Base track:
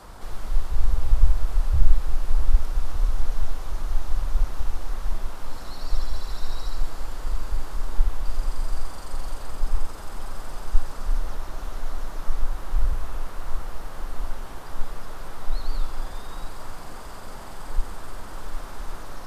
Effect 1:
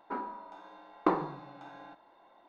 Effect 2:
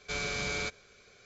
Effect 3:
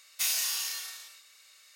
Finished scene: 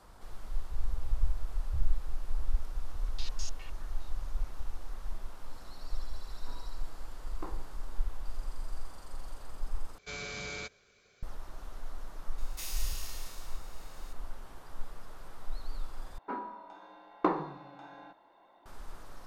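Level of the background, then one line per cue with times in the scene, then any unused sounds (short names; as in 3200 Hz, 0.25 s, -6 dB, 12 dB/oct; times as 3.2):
base track -12 dB
2.88 add 3 -17 dB + stepped low-pass 9.8 Hz 250–6300 Hz
6.36 add 1 -17.5 dB
9.98 replace with 2 -6.5 dB
12.38 add 3 -14.5 dB + per-bin compression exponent 0.6
16.18 replace with 1 -1 dB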